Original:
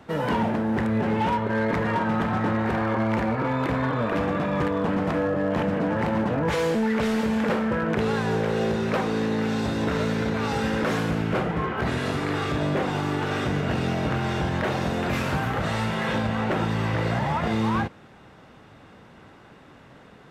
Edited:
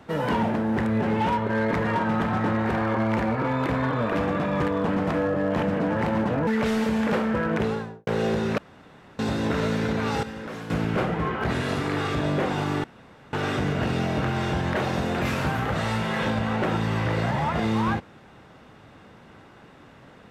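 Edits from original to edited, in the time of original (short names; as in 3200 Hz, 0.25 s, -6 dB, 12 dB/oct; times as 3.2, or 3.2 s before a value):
6.47–6.84 cut
7.92–8.44 studio fade out
8.95–9.56 room tone
10.6–11.07 gain -11 dB
13.21 insert room tone 0.49 s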